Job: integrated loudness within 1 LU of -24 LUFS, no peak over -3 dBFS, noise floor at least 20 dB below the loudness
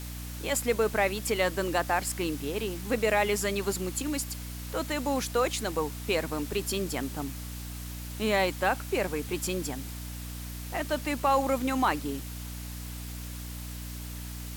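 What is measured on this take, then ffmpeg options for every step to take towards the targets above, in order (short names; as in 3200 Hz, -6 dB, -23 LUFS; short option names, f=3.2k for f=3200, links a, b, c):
hum 60 Hz; harmonics up to 300 Hz; hum level -37 dBFS; noise floor -39 dBFS; noise floor target -51 dBFS; loudness -30.5 LUFS; peak -13.5 dBFS; loudness target -24.0 LUFS
-> -af "bandreject=f=60:t=h:w=6,bandreject=f=120:t=h:w=6,bandreject=f=180:t=h:w=6,bandreject=f=240:t=h:w=6,bandreject=f=300:t=h:w=6"
-af "afftdn=nr=12:nf=-39"
-af "volume=6.5dB"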